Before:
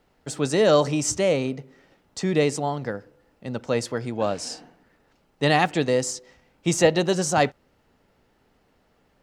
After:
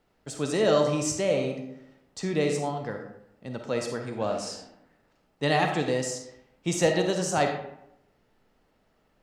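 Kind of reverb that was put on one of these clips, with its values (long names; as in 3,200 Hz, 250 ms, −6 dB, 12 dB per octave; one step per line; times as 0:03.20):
comb and all-pass reverb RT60 0.79 s, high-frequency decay 0.6×, pre-delay 10 ms, DRR 3.5 dB
level −5.5 dB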